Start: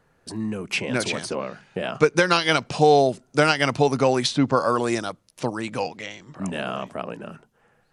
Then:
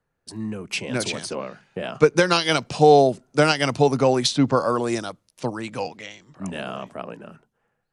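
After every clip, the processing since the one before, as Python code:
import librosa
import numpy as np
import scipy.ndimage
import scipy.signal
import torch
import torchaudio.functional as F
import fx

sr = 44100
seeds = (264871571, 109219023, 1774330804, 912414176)

y = fx.dynamic_eq(x, sr, hz=1800.0, q=0.7, threshold_db=-30.0, ratio=4.0, max_db=-4)
y = fx.band_widen(y, sr, depth_pct=40)
y = F.gain(torch.from_numpy(y), 1.0).numpy()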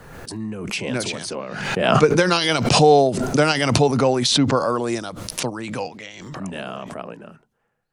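y = fx.pre_swell(x, sr, db_per_s=41.0)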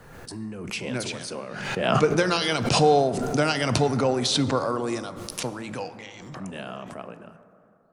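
y = fx.rev_plate(x, sr, seeds[0], rt60_s=2.9, hf_ratio=0.3, predelay_ms=0, drr_db=11.5)
y = F.gain(torch.from_numpy(y), -5.5).numpy()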